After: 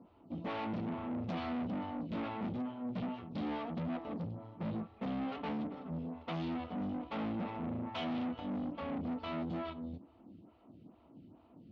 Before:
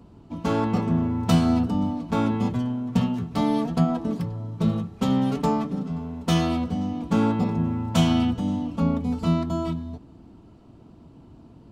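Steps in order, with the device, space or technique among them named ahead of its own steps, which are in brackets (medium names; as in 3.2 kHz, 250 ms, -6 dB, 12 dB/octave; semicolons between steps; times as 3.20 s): vibe pedal into a guitar amplifier (lamp-driven phase shifter 2.3 Hz; valve stage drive 34 dB, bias 0.65; cabinet simulation 100–3700 Hz, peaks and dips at 130 Hz -7 dB, 410 Hz -6 dB, 1 kHz -3 dB, 1.6 kHz -7 dB)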